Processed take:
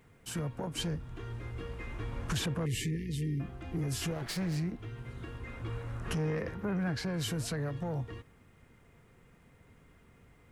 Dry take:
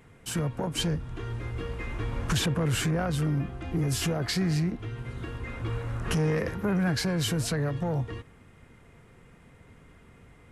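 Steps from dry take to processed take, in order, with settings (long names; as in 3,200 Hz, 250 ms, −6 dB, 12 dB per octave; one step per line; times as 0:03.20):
0:04.11–0:04.57: lower of the sound and its delayed copy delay 6.1 ms
0:06.13–0:07.14: high-shelf EQ 7,200 Hz −11.5 dB
bit-depth reduction 12 bits, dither none
0:02.66–0:03.40: linear-phase brick-wall band-stop 480–1,700 Hz
level −6.5 dB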